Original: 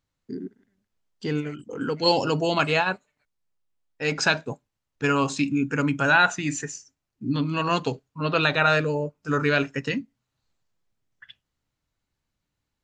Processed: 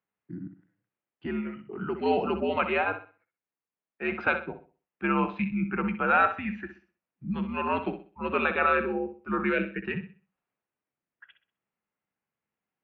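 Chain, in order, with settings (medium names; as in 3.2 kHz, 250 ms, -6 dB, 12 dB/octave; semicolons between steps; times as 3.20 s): flutter echo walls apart 10.9 m, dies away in 0.37 s; mistuned SSB -85 Hz 240–2800 Hz; time-frequency box 9.53–9.85 s, 660–1400 Hz -13 dB; trim -3.5 dB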